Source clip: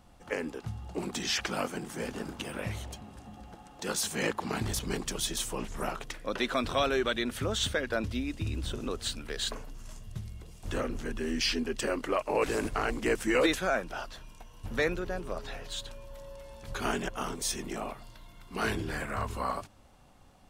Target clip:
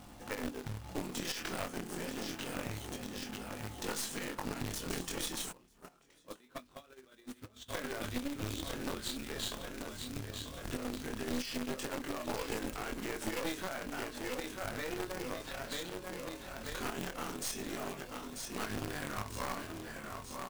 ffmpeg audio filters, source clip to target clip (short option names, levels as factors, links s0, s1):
-filter_complex "[0:a]equalizer=f=270:w=4:g=7,asplit=2[s0][s1];[s1]adelay=28,volume=0.355[s2];[s0][s2]amix=inputs=2:normalize=0,aecho=1:1:940|1880|2820|3760|4700|5640:0.316|0.171|0.0922|0.0498|0.0269|0.0145,flanger=delay=19.5:depth=3:speed=0.27,acrusher=bits=2:mode=log:mix=0:aa=0.000001,alimiter=level_in=1.33:limit=0.0631:level=0:latency=1:release=137,volume=0.75,acompressor=threshold=0.00158:ratio=2,lowshelf=f=71:g=-5.5,asplit=3[s3][s4][s5];[s3]afade=t=out:st=5.51:d=0.02[s6];[s4]agate=range=0.0708:threshold=0.00562:ratio=16:detection=peak,afade=t=in:st=5.51:d=0.02,afade=t=out:st=7.68:d=0.02[s7];[s5]afade=t=in:st=7.68:d=0.02[s8];[s6][s7][s8]amix=inputs=3:normalize=0,aeval=exprs='0.0168*(cos(1*acos(clip(val(0)/0.0168,-1,1)))-cos(1*PI/2))+0.00668*(cos(2*acos(clip(val(0)/0.0168,-1,1)))-cos(2*PI/2))+0.00299*(cos(6*acos(clip(val(0)/0.0168,-1,1)))-cos(6*PI/2))+0.00188*(cos(8*acos(clip(val(0)/0.0168,-1,1)))-cos(8*PI/2))':c=same,volume=2.82"